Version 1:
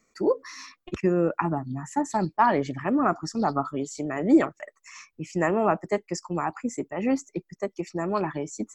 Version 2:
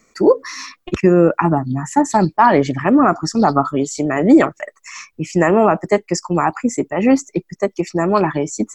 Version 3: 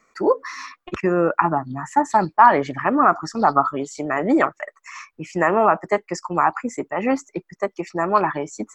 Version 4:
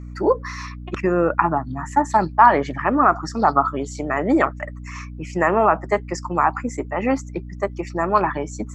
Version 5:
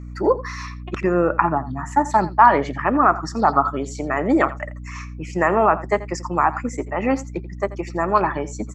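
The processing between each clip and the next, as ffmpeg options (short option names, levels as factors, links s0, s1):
-af "alimiter=level_in=4.22:limit=0.891:release=50:level=0:latency=1,volume=0.891"
-af "equalizer=f=1200:t=o:w=2.3:g=13,volume=0.266"
-af "aeval=exprs='val(0)+0.0224*(sin(2*PI*60*n/s)+sin(2*PI*2*60*n/s)/2+sin(2*PI*3*60*n/s)/3+sin(2*PI*4*60*n/s)/4+sin(2*PI*5*60*n/s)/5)':c=same"
-af "aecho=1:1:85:0.141"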